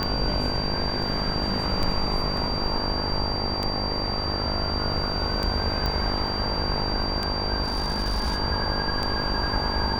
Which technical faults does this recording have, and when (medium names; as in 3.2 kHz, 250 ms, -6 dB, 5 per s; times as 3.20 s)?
buzz 50 Hz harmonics 22 -31 dBFS
tick 33 1/3 rpm -13 dBFS
whine 4.7 kHz -29 dBFS
5.86 s: pop -14 dBFS
7.64–8.39 s: clipped -21 dBFS